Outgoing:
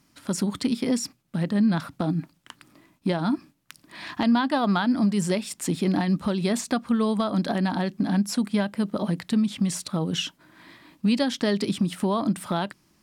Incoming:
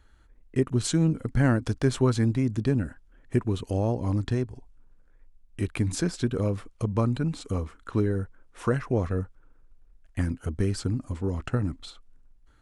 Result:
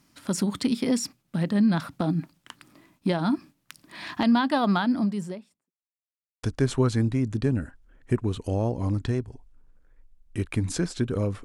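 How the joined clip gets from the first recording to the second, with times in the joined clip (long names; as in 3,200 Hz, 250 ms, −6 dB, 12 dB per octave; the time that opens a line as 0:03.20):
outgoing
0:04.65–0:05.71: fade out and dull
0:05.71–0:06.43: silence
0:06.43: continue with incoming from 0:01.66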